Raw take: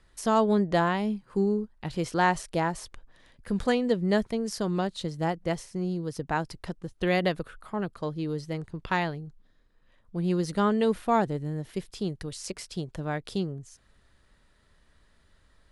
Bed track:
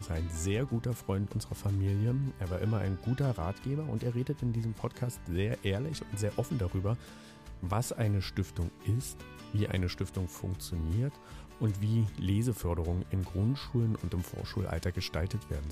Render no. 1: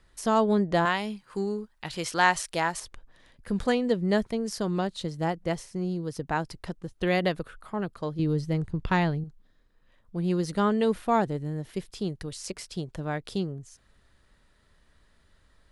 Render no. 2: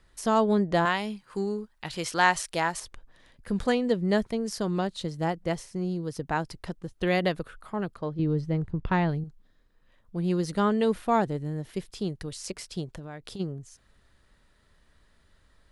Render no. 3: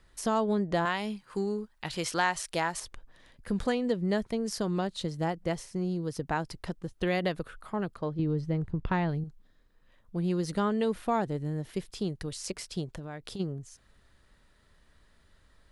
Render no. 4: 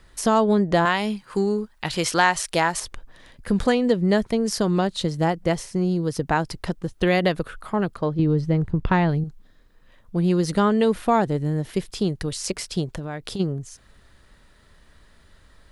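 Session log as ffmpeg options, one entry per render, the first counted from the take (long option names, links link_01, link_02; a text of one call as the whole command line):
ffmpeg -i in.wav -filter_complex "[0:a]asettb=1/sr,asplit=3[link_01][link_02][link_03];[link_01]atrim=end=0.854[link_04];[link_02]atrim=start=0.85:end=2.8,asetpts=PTS-STARTPTS,afade=type=in:duration=0.004:curve=qsin,afade=type=out:start_time=1.946:duration=0.004:curve=qsin,tiltshelf=frequency=730:gain=-7[link_05];[link_03]atrim=start=2.796[link_06];[link_04][link_05]acrossfade=duration=0.004:curve1=hsin:curve2=qsin[link_07];[link_07][link_06]acrossfade=duration=0.004:curve1=qsin:curve2=hsin,asettb=1/sr,asplit=3[link_08][link_09][link_10];[link_08]atrim=end=8.194[link_11];[link_09]atrim=start=8.19:end=9.24,asetpts=PTS-STARTPTS,afade=type=in:duration=0.004:curve=qsin,afade=type=out:start_time=1.046:duration=0.004:curve=qsin,lowshelf=frequency=240:gain=11[link_12];[link_10]atrim=start=9.236[link_13];[link_11][link_12]acrossfade=duration=0.004:curve1=hsin:curve2=qsin[link_14];[link_14][link_13]acrossfade=duration=0.004:curve1=qsin:curve2=hsin" out.wav
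ffmpeg -i in.wav -filter_complex "[0:a]asettb=1/sr,asplit=3[link_01][link_02][link_03];[link_01]atrim=end=7.974[link_04];[link_02]atrim=start=7.97:end=9.09,asetpts=PTS-STARTPTS,afade=type=in:duration=0.004:curve=qsin,afade=type=out:start_time=1.116:duration=0.004:curve=qsin,lowpass=frequency=2000:poles=1[link_05];[link_03]atrim=start=9.086[link_06];[link_04][link_05]acrossfade=duration=0.004:curve1=hsin:curve2=qsin[link_07];[link_07][link_06]acrossfade=duration=0.004:curve1=qsin:curve2=hsin,asplit=3[link_08][link_09][link_10];[link_08]afade=type=out:start_time=12.9:duration=0.02[link_11];[link_09]acompressor=threshold=-36dB:ratio=6:attack=3.2:release=140:knee=1:detection=peak,afade=type=in:start_time=12.9:duration=0.02,afade=type=out:start_time=13.39:duration=0.02[link_12];[link_10]afade=type=in:start_time=13.39:duration=0.02[link_13];[link_11][link_12][link_13]amix=inputs=3:normalize=0" out.wav
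ffmpeg -i in.wav -af "acompressor=threshold=-27dB:ratio=2" out.wav
ffmpeg -i in.wav -af "volume=9dB" out.wav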